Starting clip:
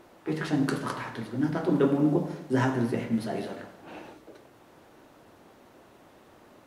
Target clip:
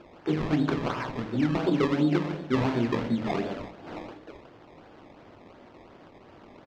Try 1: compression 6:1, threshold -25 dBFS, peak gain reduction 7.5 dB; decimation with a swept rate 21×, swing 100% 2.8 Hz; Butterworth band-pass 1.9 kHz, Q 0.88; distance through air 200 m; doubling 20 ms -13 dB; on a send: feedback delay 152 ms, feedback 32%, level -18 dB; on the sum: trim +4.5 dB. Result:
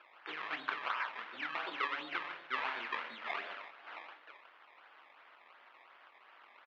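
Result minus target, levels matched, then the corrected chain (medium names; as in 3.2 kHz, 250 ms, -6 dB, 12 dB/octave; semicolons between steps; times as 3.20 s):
echo 71 ms late; 2 kHz band +12.0 dB
compression 6:1, threshold -25 dBFS, peak gain reduction 7.5 dB; decimation with a swept rate 21×, swing 100% 2.8 Hz; distance through air 200 m; doubling 20 ms -13 dB; on a send: feedback delay 81 ms, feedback 32%, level -18 dB; on the sum: trim +4.5 dB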